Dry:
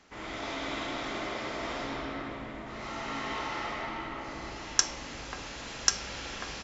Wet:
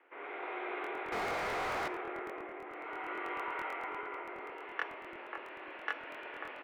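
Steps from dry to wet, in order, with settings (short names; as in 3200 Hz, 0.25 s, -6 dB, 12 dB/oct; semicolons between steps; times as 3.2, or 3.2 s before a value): mistuned SSB +88 Hz 220–2500 Hz; 1.12–1.88 overdrive pedal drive 35 dB, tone 1700 Hz, clips at -25 dBFS; on a send at -19.5 dB: reverb RT60 0.40 s, pre-delay 54 ms; on the sum: crackling interface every 0.11 s, samples 1024, repeat, from 0.82; gain -3.5 dB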